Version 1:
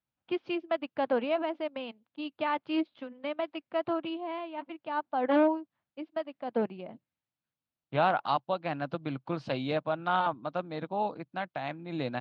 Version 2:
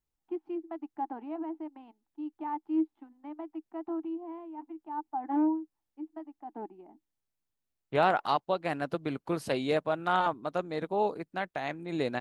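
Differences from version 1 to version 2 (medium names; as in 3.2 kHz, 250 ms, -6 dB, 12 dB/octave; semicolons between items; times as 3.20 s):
first voice: add two resonant band-passes 510 Hz, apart 1.4 oct; master: remove cabinet simulation 110–4400 Hz, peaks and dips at 130 Hz +6 dB, 410 Hz -10 dB, 1.9 kHz -5 dB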